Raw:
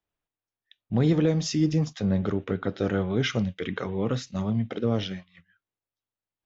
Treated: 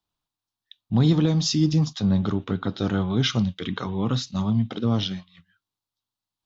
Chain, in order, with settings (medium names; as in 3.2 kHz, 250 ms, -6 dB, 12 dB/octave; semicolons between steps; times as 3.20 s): ten-band graphic EQ 125 Hz +3 dB, 250 Hz +3 dB, 500 Hz -8 dB, 1 kHz +7 dB, 2 kHz -8 dB, 4 kHz +10 dB; trim +1.5 dB